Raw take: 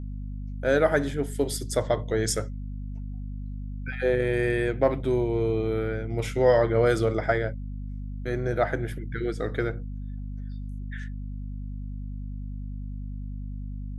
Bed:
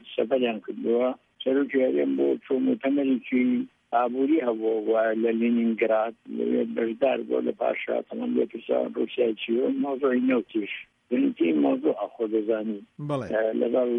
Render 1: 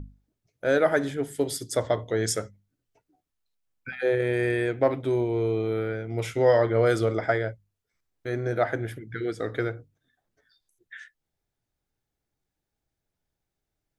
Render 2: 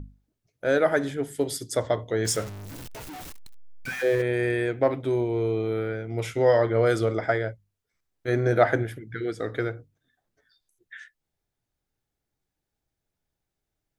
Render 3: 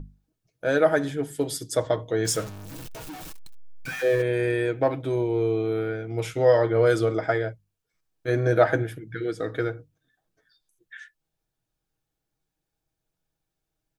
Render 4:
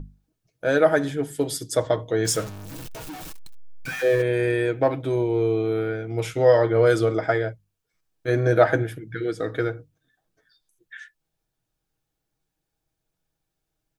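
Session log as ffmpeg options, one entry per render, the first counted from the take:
-af "bandreject=f=50:t=h:w=6,bandreject=f=100:t=h:w=6,bandreject=f=150:t=h:w=6,bandreject=f=200:t=h:w=6,bandreject=f=250:t=h:w=6"
-filter_complex "[0:a]asettb=1/sr,asplit=3[s0][s1][s2];[s0]atrim=end=2.254[s3];[s1]atrim=start=2.25:end=4.22,asetpts=PTS-STARTPTS,afade=t=in:d=0.004:c=qsin,afade=t=out:st=1.966:d=0.004:c=qsin,aeval=exprs='val(0)+0.5*0.0224*sgn(val(0))':c=same[s4];[s2]atrim=start=4.216[s5];[s3][s4]acrossfade=d=0.004:c1=hsin:c2=qsin[s6];[s6][s5]acrossfade=d=0.004:c1=qsin:c2=hsin,asplit=3[s7][s8][s9];[s7]afade=t=out:st=8.27:d=0.02[s10];[s8]acontrast=37,afade=t=in:st=8.27:d=0.02,afade=t=out:st=8.82:d=0.02[s11];[s9]afade=t=in:st=8.82:d=0.02[s12];[s10][s11][s12]amix=inputs=3:normalize=0"
-af "bandreject=f=2000:w=11,aecho=1:1:6.3:0.4"
-af "volume=1.26"

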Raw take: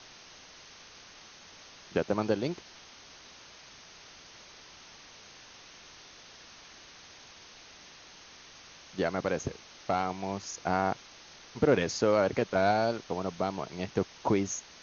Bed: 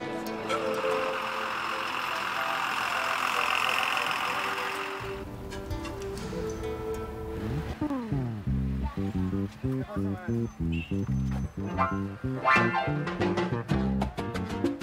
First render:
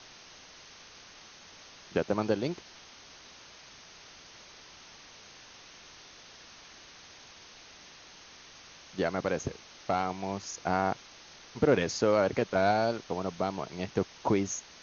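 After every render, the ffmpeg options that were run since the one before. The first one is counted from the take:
-af anull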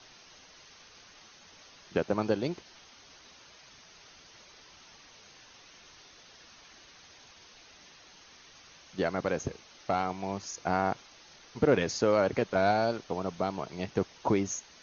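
-af "afftdn=nr=6:nf=-53"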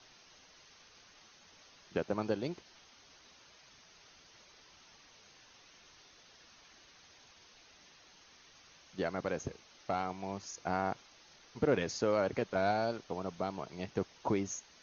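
-af "volume=0.531"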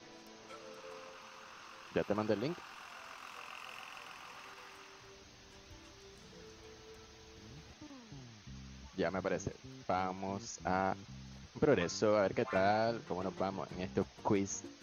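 -filter_complex "[1:a]volume=0.075[s0];[0:a][s0]amix=inputs=2:normalize=0"

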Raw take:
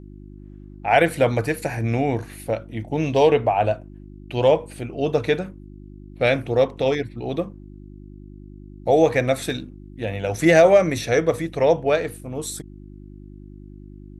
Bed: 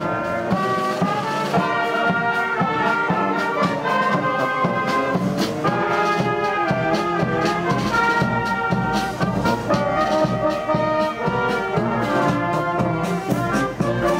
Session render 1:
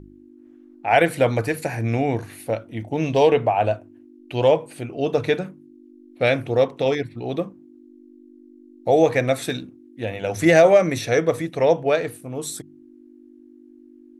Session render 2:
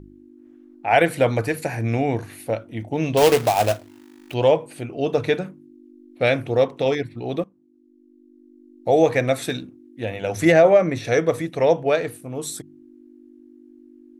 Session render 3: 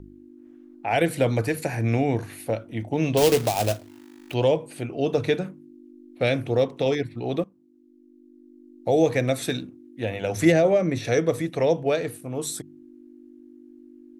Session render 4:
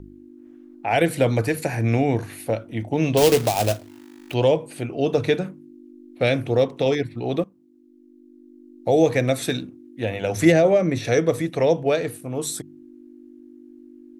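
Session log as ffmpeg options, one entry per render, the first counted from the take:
-af "bandreject=f=50:t=h:w=4,bandreject=f=100:t=h:w=4,bandreject=f=150:t=h:w=4,bandreject=f=200:t=h:w=4"
-filter_complex "[0:a]asettb=1/sr,asplit=3[s0][s1][s2];[s0]atrim=end=3.174[s3];[s1]atrim=start=3.17:end=4.34,asetpts=PTS-STARTPTS,afade=t=in:d=0.004:c=qsin,afade=t=out:st=1.166:d=0.004:c=qsin,acrusher=bits=2:mode=log:mix=0:aa=0.000001[s4];[s2]atrim=start=4.336[s5];[s3][s4]acrossfade=d=0.004:c1=hsin:c2=qsin[s6];[s6][s5]acrossfade=d=0.004:c1=qsin:c2=hsin,asettb=1/sr,asplit=3[s7][s8][s9];[s7]atrim=end=10.524[s10];[s8]atrim=start=10.52:end=11.05,asetpts=PTS-STARTPTS,afade=t=in:d=0.004:c=qsin,afade=t=out:st=0.526:d=0.004:c=qsin,lowpass=f=2100:p=1[s11];[s9]atrim=start=11.046[s12];[s10][s11]acrossfade=d=0.004:c1=hsin:c2=qsin[s13];[s13][s12]acrossfade=d=0.004:c1=qsin:c2=hsin,asplit=2[s14][s15];[s14]atrim=end=7.44,asetpts=PTS-STARTPTS,afade=t=out:st=7.436:d=0.004:c=hsin:silence=0.141254[s16];[s15]atrim=start=7.44,asetpts=PTS-STARTPTS,afade=t=in:d=1.55:silence=0.141254[s17];[s16][s17]concat=n=2:v=0:a=1"
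-filter_complex "[0:a]acrossover=split=460|3000[s0][s1][s2];[s1]acompressor=threshold=0.0355:ratio=2.5[s3];[s0][s3][s2]amix=inputs=3:normalize=0"
-af "volume=1.33"

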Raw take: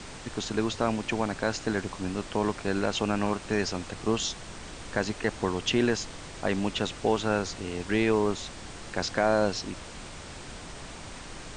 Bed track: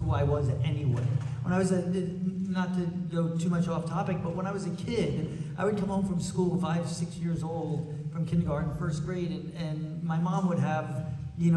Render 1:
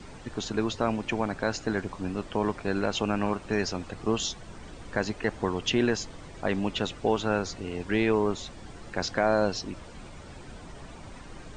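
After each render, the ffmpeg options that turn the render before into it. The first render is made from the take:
-af "afftdn=nr=10:nf=-43"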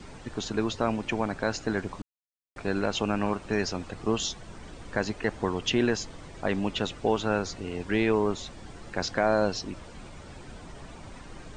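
-filter_complex "[0:a]asplit=3[s0][s1][s2];[s0]atrim=end=2.02,asetpts=PTS-STARTPTS,afade=t=out:st=2.016:d=0.004:c=hsin[s3];[s1]atrim=start=2.02:end=2.56,asetpts=PTS-STARTPTS,volume=0[s4];[s2]atrim=start=2.56,asetpts=PTS-STARTPTS,afade=t=in:d=0.004:c=hsin[s5];[s3][s4][s5]concat=n=3:v=0:a=1"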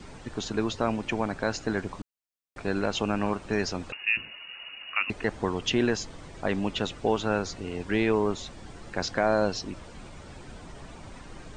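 -filter_complex "[0:a]asettb=1/sr,asplit=3[s0][s1][s2];[s0]atrim=end=3.924[s3];[s1]atrim=start=3.92:end=5.1,asetpts=PTS-STARTPTS,afade=t=in:d=0.004:c=qsin,afade=t=out:st=1.176:d=0.004:c=qsin,lowpass=f=2500:t=q:w=0.5098,lowpass=f=2500:t=q:w=0.6013,lowpass=f=2500:t=q:w=0.9,lowpass=f=2500:t=q:w=2.563,afreqshift=-2900[s4];[s2]atrim=start=5.096[s5];[s3][s4]acrossfade=d=0.004:c1=hsin:c2=qsin[s6];[s6][s5]acrossfade=d=0.004:c1=qsin:c2=hsin"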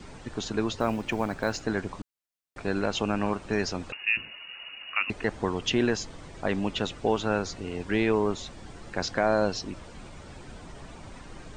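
-filter_complex "[0:a]asettb=1/sr,asplit=3[s0][s1][s2];[s0]atrim=end=0.794[s3];[s1]atrim=start=0.79:end=1.62,asetpts=PTS-STARTPTS,afade=t=in:d=0.004:c=qsin,afade=t=out:st=0.826:d=0.004:c=qsin,acrusher=bits=8:mode=log:mix=0:aa=0.000001[s4];[s2]atrim=start=1.616[s5];[s3][s4]acrossfade=d=0.004:c1=hsin:c2=qsin[s6];[s6][s5]acrossfade=d=0.004:c1=qsin:c2=hsin"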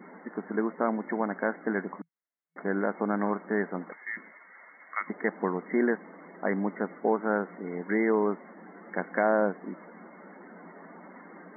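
-af "afftfilt=real='re*between(b*sr/4096,170,2200)':imag='im*between(b*sr/4096,170,2200)':win_size=4096:overlap=0.75,aemphasis=mode=production:type=50fm"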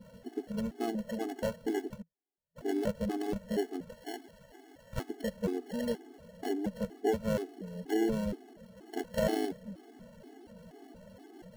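-filter_complex "[0:a]acrossover=split=760[s0][s1];[s1]acrusher=samples=36:mix=1:aa=0.000001[s2];[s0][s2]amix=inputs=2:normalize=0,afftfilt=real='re*gt(sin(2*PI*2.1*pts/sr)*(1-2*mod(floor(b*sr/1024/220),2)),0)':imag='im*gt(sin(2*PI*2.1*pts/sr)*(1-2*mod(floor(b*sr/1024/220),2)),0)':win_size=1024:overlap=0.75"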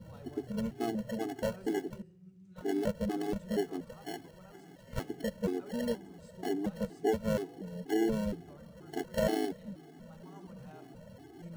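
-filter_complex "[1:a]volume=0.0596[s0];[0:a][s0]amix=inputs=2:normalize=0"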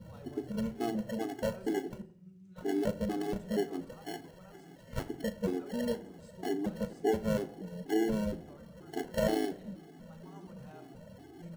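-filter_complex "[0:a]asplit=2[s0][s1];[s1]adelay=37,volume=0.224[s2];[s0][s2]amix=inputs=2:normalize=0,asplit=2[s3][s4];[s4]adelay=85,lowpass=f=1800:p=1,volume=0.133,asplit=2[s5][s6];[s6]adelay=85,lowpass=f=1800:p=1,volume=0.44,asplit=2[s7][s8];[s8]adelay=85,lowpass=f=1800:p=1,volume=0.44,asplit=2[s9][s10];[s10]adelay=85,lowpass=f=1800:p=1,volume=0.44[s11];[s3][s5][s7][s9][s11]amix=inputs=5:normalize=0"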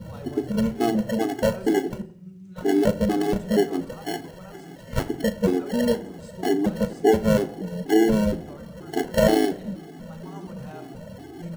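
-af "volume=3.76"

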